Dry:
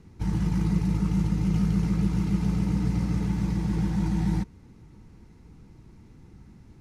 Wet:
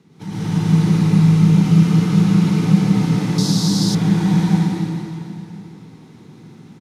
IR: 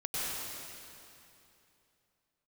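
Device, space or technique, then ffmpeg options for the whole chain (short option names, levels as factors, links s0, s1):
PA in a hall: -filter_complex "[0:a]highpass=f=140:w=0.5412,highpass=f=140:w=1.3066,equalizer=f=3600:t=o:w=0.43:g=6.5,aecho=1:1:169:0.562[s0];[1:a]atrim=start_sample=2205[s1];[s0][s1]afir=irnorm=-1:irlink=0,asettb=1/sr,asplit=3[s2][s3][s4];[s2]atrim=end=3.384[s5];[s3]atrim=start=3.38:end=3.95,asetpts=PTS-STARTPTS,afade=t=in:d=0.004:c=qsin,afade=t=out:st=0.566:d=0.004:c=qsin,highshelf=f=3400:t=q:w=3:g=11[s6];[s4]atrim=start=3.946[s7];[s5][s6]acrossfade=d=0.004:c1=hsin:c2=qsin[s8];[s8][s7]acrossfade=d=0.004:c1=qsin:c2=hsin,volume=1.68"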